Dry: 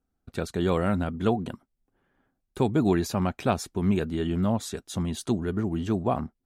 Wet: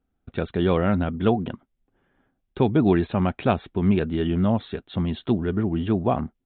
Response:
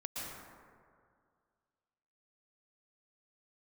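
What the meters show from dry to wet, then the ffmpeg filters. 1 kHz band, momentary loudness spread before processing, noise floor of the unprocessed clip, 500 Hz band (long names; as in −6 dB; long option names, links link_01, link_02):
+3.0 dB, 8 LU, −79 dBFS, +4.0 dB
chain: -af "equalizer=frequency=1100:width=1.5:gain=-2,aresample=8000,aresample=44100,volume=4dB"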